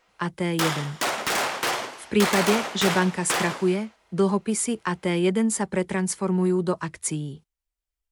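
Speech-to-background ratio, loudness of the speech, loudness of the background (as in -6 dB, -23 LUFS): 1.5 dB, -25.0 LUFS, -26.5 LUFS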